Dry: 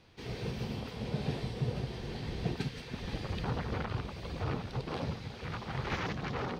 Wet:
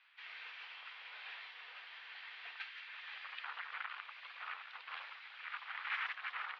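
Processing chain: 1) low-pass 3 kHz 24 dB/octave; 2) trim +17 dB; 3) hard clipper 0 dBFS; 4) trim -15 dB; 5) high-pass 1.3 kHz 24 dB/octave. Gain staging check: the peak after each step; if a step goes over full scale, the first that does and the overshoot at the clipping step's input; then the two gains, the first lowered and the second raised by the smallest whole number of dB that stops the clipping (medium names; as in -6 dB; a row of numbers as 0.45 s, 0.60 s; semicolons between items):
-21.5 dBFS, -4.5 dBFS, -4.5 dBFS, -19.5 dBFS, -26.0 dBFS; nothing clips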